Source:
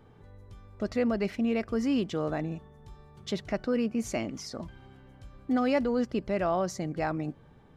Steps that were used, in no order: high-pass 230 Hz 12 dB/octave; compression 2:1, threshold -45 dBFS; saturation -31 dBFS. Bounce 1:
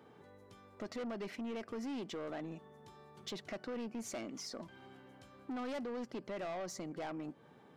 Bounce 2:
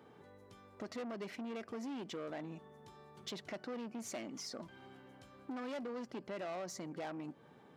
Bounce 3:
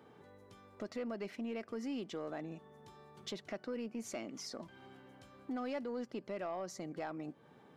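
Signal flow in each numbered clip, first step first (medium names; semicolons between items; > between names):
high-pass > saturation > compression; saturation > high-pass > compression; high-pass > compression > saturation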